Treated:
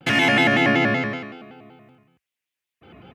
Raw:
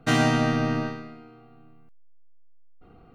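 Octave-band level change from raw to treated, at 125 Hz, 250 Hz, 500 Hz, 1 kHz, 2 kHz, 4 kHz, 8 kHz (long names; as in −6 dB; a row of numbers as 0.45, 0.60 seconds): −1.5 dB, +3.0 dB, +5.5 dB, +4.5 dB, +11.5 dB, +8.5 dB, can't be measured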